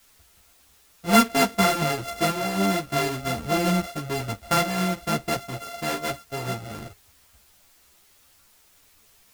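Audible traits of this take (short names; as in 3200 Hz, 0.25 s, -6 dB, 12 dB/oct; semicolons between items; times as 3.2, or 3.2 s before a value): a buzz of ramps at a fixed pitch in blocks of 64 samples; tremolo saw up 1.3 Hz, depth 45%; a quantiser's noise floor 10-bit, dither triangular; a shimmering, thickened sound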